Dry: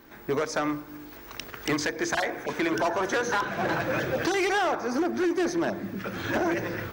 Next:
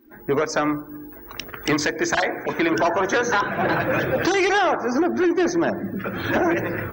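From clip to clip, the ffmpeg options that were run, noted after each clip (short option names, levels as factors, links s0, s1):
-af "afftdn=nr=21:nf=-44,volume=2"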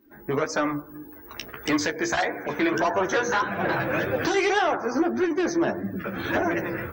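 -af "flanger=delay=9.9:depth=5.4:regen=19:speed=1.7:shape=sinusoidal"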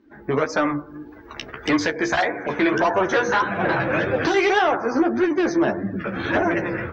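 -af "lowpass=4600,volume=1.58"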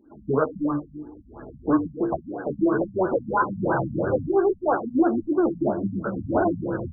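-af "afftfilt=real='re*lt(b*sr/1024,240*pow(1700/240,0.5+0.5*sin(2*PI*3*pts/sr)))':imag='im*lt(b*sr/1024,240*pow(1700/240,0.5+0.5*sin(2*PI*3*pts/sr)))':win_size=1024:overlap=0.75"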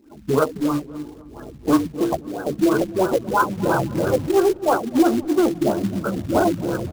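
-filter_complex "[0:a]acrusher=bits=4:mode=log:mix=0:aa=0.000001,asplit=2[s0][s1];[s1]adelay=260,lowpass=f=1500:p=1,volume=0.119,asplit=2[s2][s3];[s3]adelay=260,lowpass=f=1500:p=1,volume=0.51,asplit=2[s4][s5];[s5]adelay=260,lowpass=f=1500:p=1,volume=0.51,asplit=2[s6][s7];[s7]adelay=260,lowpass=f=1500:p=1,volume=0.51[s8];[s0][s2][s4][s6][s8]amix=inputs=5:normalize=0,volume=1.5"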